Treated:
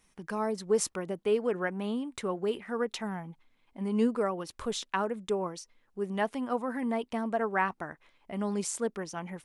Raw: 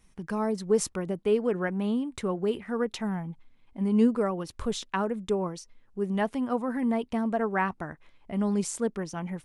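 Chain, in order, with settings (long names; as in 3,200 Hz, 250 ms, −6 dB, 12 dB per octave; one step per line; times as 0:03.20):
low-shelf EQ 210 Hz −12 dB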